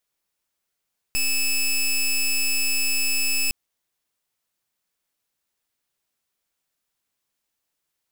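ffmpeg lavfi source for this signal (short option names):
-f lavfi -i "aevalsrc='0.0841*(2*lt(mod(2610*t,1),0.15)-1)':d=2.36:s=44100"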